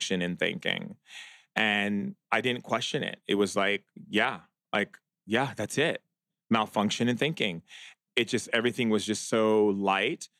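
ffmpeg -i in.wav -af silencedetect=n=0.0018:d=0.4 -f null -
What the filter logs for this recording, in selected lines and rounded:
silence_start: 5.98
silence_end: 6.51 | silence_duration: 0.53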